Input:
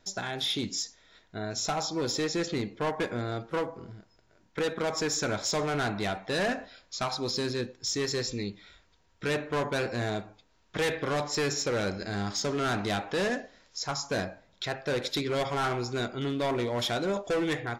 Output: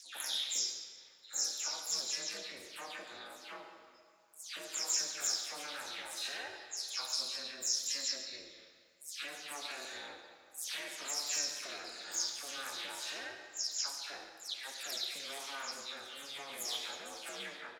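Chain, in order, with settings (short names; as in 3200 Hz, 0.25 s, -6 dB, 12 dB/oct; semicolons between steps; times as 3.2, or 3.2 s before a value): spectral delay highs early, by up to 0.244 s; in parallel at -1.5 dB: limiter -24 dBFS, peak gain reduction 7.5 dB; on the sum: ring modulator 140 Hz; differentiator; echo 0.142 s -14.5 dB; on a send at -5.5 dB: reverb RT60 2.2 s, pre-delay 26 ms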